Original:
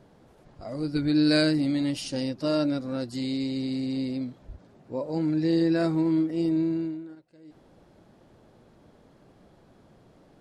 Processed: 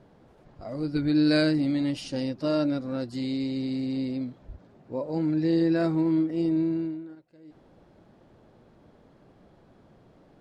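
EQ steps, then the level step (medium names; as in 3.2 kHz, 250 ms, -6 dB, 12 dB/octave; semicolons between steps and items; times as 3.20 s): treble shelf 6.2 kHz -11 dB; 0.0 dB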